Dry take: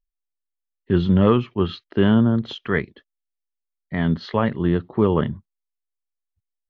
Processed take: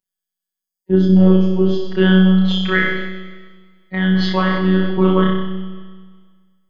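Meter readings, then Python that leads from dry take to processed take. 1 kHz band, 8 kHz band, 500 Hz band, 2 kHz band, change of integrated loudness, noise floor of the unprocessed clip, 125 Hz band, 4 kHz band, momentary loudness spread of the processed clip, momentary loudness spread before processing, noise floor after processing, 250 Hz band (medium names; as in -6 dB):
+4.0 dB, no reading, +4.0 dB, +10.0 dB, +5.5 dB, -83 dBFS, +5.5 dB, +9.5 dB, 16 LU, 9 LU, -85 dBFS, +6.5 dB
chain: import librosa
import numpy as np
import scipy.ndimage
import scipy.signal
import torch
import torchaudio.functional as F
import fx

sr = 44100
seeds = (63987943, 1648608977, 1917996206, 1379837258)

p1 = fx.spec_box(x, sr, start_s=0.6, length_s=1.24, low_hz=930.0, high_hz=4500.0, gain_db=-13)
p2 = scipy.signal.sosfilt(scipy.signal.butter(2, 77.0, 'highpass', fs=sr, output='sos'), p1)
p3 = fx.low_shelf(p2, sr, hz=110.0, db=-5.0)
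p4 = fx.hpss(p3, sr, part='percussive', gain_db=5)
p5 = fx.high_shelf(p4, sr, hz=4400.0, db=5.5)
p6 = fx.robotise(p5, sr, hz=187.0)
p7 = p6 + fx.room_flutter(p6, sr, wall_m=5.4, rt60_s=0.83, dry=0)
p8 = fx.rev_schroeder(p7, sr, rt60_s=1.7, comb_ms=33, drr_db=8.0)
p9 = fx.sustainer(p8, sr, db_per_s=36.0)
y = F.gain(torch.from_numpy(p9), 1.0).numpy()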